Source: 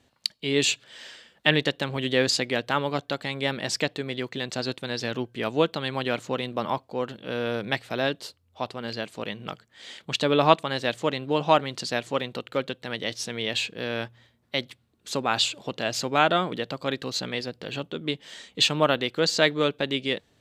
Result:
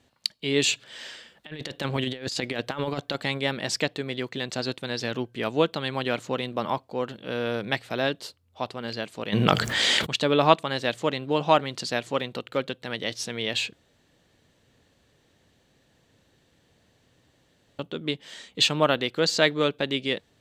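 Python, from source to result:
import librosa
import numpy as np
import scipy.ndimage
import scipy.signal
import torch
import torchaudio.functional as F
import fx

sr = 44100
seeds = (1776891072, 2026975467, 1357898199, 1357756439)

y = fx.over_compress(x, sr, threshold_db=-28.0, ratio=-0.5, at=(0.72, 3.37), fade=0.02)
y = fx.env_flatten(y, sr, amount_pct=70, at=(9.32, 10.05), fade=0.02)
y = fx.edit(y, sr, fx.room_tone_fill(start_s=13.73, length_s=4.06), tone=tone)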